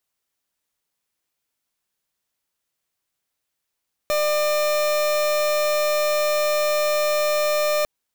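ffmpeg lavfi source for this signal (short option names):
-f lavfi -i "aevalsrc='0.0944*(2*lt(mod(600*t,1),0.38)-1)':d=3.75:s=44100"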